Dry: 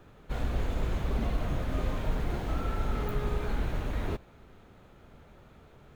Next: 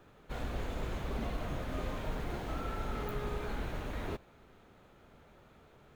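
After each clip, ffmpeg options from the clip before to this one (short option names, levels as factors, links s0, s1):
-af "lowshelf=f=180:g=-6.5,volume=0.75"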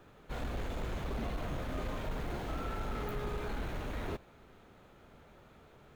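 -af "asoftclip=type=tanh:threshold=0.0282,volume=1.19"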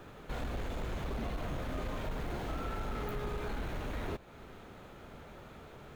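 -af "acompressor=threshold=0.00398:ratio=2,volume=2.37"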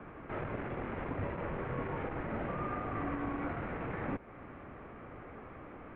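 -af "highpass=f=170:t=q:w=0.5412,highpass=f=170:t=q:w=1.307,lowpass=f=2500:t=q:w=0.5176,lowpass=f=2500:t=q:w=0.7071,lowpass=f=2500:t=q:w=1.932,afreqshift=-130,volume=1.58"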